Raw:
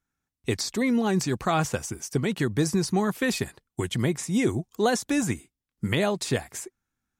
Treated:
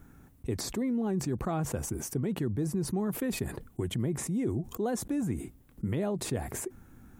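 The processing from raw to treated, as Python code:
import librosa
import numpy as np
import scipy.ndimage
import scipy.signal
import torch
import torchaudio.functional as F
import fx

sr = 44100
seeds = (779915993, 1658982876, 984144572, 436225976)

y = fx.curve_eq(x, sr, hz=(340.0, 5200.0, 12000.0), db=(0, -20, -9))
y = fx.env_flatten(y, sr, amount_pct=70)
y = y * librosa.db_to_amplitude(-8.0)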